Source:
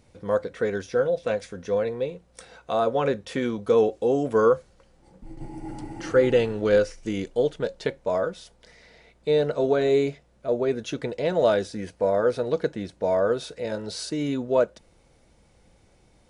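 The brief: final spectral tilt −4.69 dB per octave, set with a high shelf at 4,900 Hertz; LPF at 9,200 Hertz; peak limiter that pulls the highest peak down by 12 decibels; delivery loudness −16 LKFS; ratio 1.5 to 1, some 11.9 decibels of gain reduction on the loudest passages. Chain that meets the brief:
low-pass filter 9,200 Hz
high-shelf EQ 4,900 Hz +8.5 dB
downward compressor 1.5 to 1, threshold −49 dBFS
level +25 dB
brickwall limiter −6 dBFS

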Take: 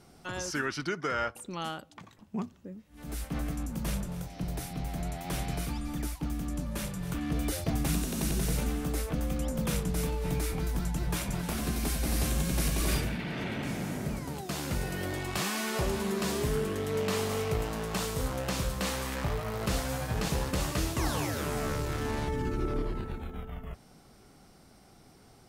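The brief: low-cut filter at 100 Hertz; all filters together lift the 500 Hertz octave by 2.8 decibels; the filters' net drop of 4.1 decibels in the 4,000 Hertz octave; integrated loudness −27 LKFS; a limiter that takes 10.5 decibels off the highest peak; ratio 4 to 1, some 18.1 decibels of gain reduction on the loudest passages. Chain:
high-pass filter 100 Hz
parametric band 500 Hz +3.5 dB
parametric band 4,000 Hz −5.5 dB
downward compressor 4 to 1, threshold −49 dBFS
level +25.5 dB
brickwall limiter −18 dBFS

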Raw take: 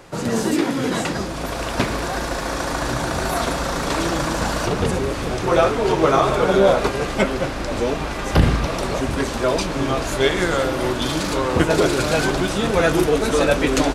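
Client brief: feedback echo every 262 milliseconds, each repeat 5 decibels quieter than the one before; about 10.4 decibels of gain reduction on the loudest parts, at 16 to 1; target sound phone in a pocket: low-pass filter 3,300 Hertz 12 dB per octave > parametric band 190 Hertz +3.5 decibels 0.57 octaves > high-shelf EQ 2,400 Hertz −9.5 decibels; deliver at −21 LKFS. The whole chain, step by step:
downward compressor 16 to 1, threshold −19 dBFS
low-pass filter 3,300 Hz 12 dB per octave
parametric band 190 Hz +3.5 dB 0.57 octaves
high-shelf EQ 2,400 Hz −9.5 dB
repeating echo 262 ms, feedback 56%, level −5 dB
level +2.5 dB

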